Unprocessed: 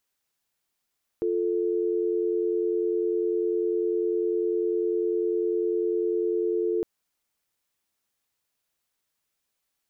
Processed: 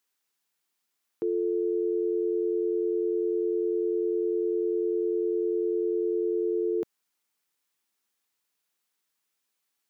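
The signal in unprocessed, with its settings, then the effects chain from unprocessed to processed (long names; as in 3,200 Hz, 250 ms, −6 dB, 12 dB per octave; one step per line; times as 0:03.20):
call progress tone dial tone, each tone −25.5 dBFS 5.61 s
Bessel high-pass filter 210 Hz
parametric band 610 Hz −6 dB 0.39 octaves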